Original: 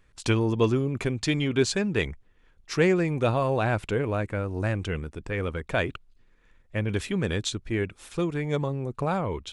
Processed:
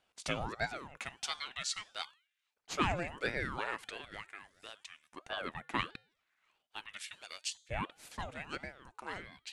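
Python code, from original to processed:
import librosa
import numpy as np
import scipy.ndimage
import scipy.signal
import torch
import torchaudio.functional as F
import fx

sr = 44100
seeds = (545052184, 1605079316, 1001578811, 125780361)

y = fx.comb_fb(x, sr, f0_hz=320.0, decay_s=0.58, harmonics='all', damping=0.0, mix_pct=50)
y = fx.filter_lfo_highpass(y, sr, shape='saw_up', hz=0.39, low_hz=330.0, high_hz=4100.0, q=0.73)
y = fx.ring_lfo(y, sr, carrier_hz=670.0, swing_pct=75, hz=1.5)
y = F.gain(torch.from_numpy(y), 2.0).numpy()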